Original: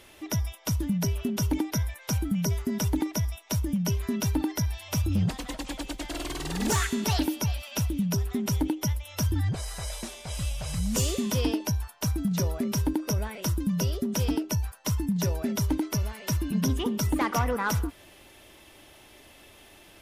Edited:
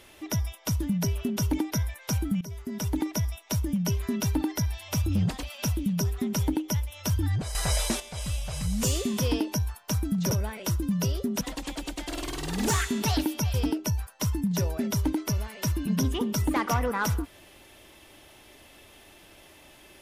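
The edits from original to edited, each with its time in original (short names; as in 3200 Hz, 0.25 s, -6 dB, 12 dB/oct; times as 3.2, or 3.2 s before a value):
2.41–3.08 fade in, from -16.5 dB
5.43–7.56 move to 14.19
9.68–10.13 gain +9 dB
12.44–13.09 cut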